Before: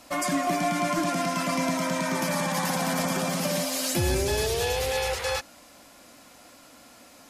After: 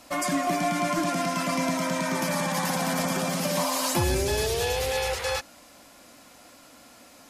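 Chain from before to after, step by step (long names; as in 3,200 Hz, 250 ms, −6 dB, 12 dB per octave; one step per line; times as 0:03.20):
0:03.57–0:04.04: parametric band 990 Hz +15 dB 0.54 octaves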